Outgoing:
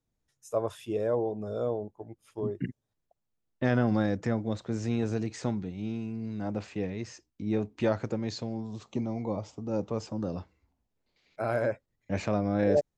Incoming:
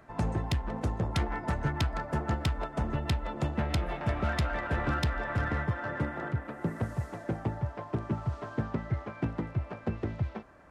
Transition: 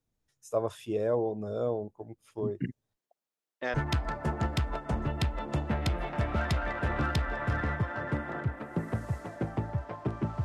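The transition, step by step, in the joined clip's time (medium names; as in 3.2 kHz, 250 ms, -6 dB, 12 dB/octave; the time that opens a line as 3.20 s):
outgoing
2.96–3.74 s: high-pass 290 Hz -> 620 Hz
3.74 s: go over to incoming from 1.62 s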